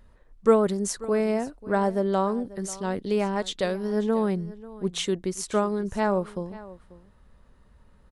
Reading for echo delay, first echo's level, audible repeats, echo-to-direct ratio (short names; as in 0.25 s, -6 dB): 0.539 s, -18.5 dB, 1, -18.5 dB